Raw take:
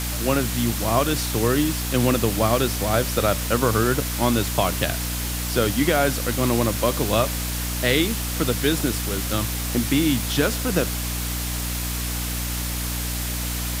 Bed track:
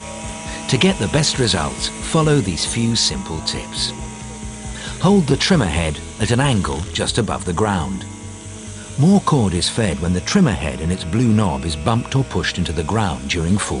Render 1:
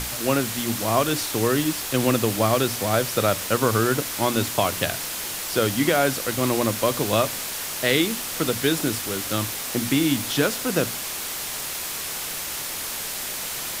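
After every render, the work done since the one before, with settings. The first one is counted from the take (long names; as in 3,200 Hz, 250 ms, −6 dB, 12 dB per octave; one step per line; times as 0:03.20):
mains-hum notches 60/120/180/240/300 Hz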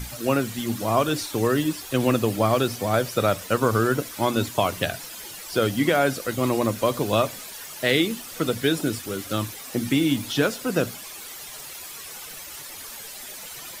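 broadband denoise 12 dB, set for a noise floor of −31 dBFS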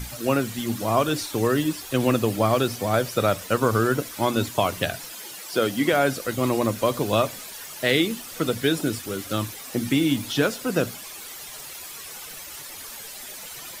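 0:05.14–0:05.93: high-pass filter 170 Hz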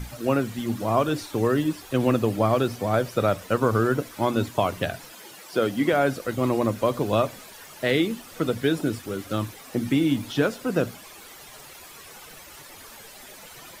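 high-shelf EQ 2,600 Hz −9 dB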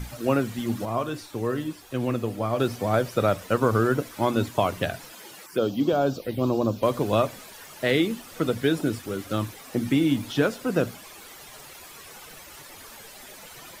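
0:00.85–0:02.60: tuned comb filter 120 Hz, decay 0.3 s
0:05.46–0:06.83: phaser swept by the level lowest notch 580 Hz, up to 2,000 Hz, full sweep at −20 dBFS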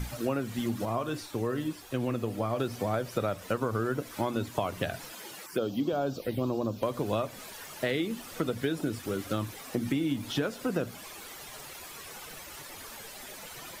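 downward compressor 4 to 1, threshold −27 dBFS, peak gain reduction 10.5 dB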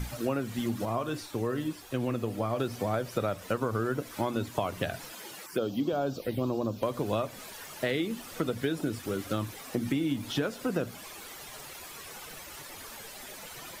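no processing that can be heard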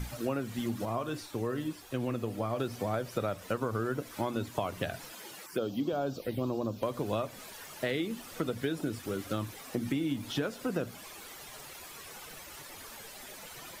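level −2.5 dB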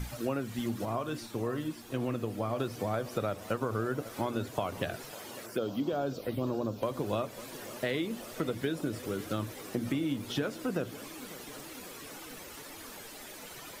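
tape delay 549 ms, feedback 85%, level −15.5 dB, low-pass 2,400 Hz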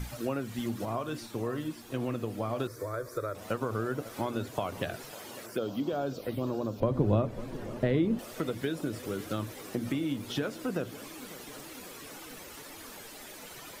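0:02.67–0:03.35: phaser with its sweep stopped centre 780 Hz, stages 6
0:06.80–0:08.19: spectral tilt −4 dB per octave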